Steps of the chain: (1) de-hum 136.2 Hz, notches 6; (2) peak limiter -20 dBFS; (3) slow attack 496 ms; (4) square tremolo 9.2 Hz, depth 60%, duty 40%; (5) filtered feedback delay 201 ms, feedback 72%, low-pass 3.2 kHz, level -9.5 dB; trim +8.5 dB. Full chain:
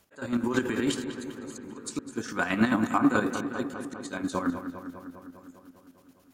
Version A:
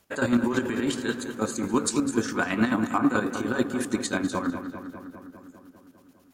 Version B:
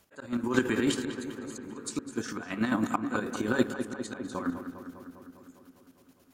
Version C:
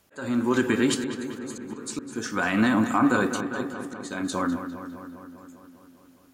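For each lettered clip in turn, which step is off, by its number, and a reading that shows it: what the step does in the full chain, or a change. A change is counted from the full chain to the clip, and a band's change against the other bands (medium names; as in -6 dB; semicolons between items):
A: 3, crest factor change -2.5 dB; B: 2, crest factor change +4.0 dB; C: 4, crest factor change -3.0 dB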